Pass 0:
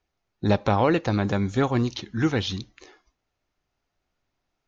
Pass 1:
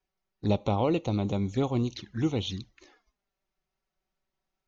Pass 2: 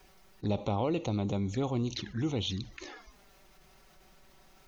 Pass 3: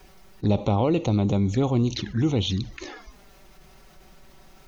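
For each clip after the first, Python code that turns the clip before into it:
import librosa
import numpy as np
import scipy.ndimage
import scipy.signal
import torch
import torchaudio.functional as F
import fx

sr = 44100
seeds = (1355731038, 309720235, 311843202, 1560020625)

y1 = fx.env_flanger(x, sr, rest_ms=5.3, full_db=-22.5)
y1 = y1 * 10.0 ** (-4.0 / 20.0)
y2 = fx.env_flatten(y1, sr, amount_pct=50)
y2 = y2 * 10.0 ** (-6.0 / 20.0)
y3 = fx.low_shelf(y2, sr, hz=400.0, db=4.5)
y3 = y3 * 10.0 ** (6.0 / 20.0)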